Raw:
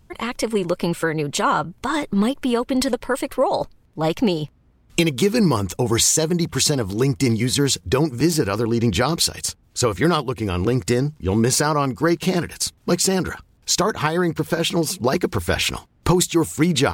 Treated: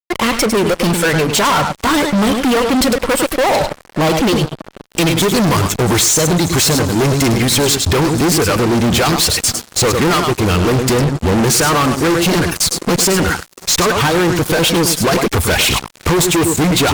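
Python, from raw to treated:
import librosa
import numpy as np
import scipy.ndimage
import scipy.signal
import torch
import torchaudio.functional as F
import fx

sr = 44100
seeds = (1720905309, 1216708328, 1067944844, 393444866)

y = fx.rev_schroeder(x, sr, rt60_s=3.9, comb_ms=30, drr_db=13.5)
y = fx.dereverb_blind(y, sr, rt60_s=0.8)
y = y + 10.0 ** (-12.0 / 20.0) * np.pad(y, (int(103 * sr / 1000.0), 0))[:len(y)]
y = fx.fuzz(y, sr, gain_db=32.0, gate_db=-38.0)
y = y * 10.0 ** (2.0 / 20.0)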